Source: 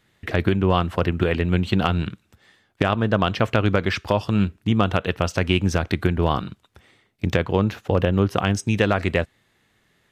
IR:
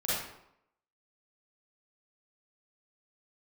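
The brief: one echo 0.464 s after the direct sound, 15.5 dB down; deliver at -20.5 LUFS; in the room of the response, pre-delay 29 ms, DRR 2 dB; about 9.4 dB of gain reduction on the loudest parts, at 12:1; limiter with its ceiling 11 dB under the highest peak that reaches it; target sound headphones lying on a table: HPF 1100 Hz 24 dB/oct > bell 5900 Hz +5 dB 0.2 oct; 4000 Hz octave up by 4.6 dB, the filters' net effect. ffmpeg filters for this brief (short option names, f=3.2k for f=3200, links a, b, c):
-filter_complex "[0:a]equalizer=f=4k:t=o:g=6.5,acompressor=threshold=-23dB:ratio=12,alimiter=limit=-18dB:level=0:latency=1,aecho=1:1:464:0.168,asplit=2[a][b];[1:a]atrim=start_sample=2205,adelay=29[c];[b][c]afir=irnorm=-1:irlink=0,volume=-10dB[d];[a][d]amix=inputs=2:normalize=0,highpass=f=1.1k:w=0.5412,highpass=f=1.1k:w=1.3066,equalizer=f=5.9k:t=o:w=0.2:g=5,volume=15.5dB"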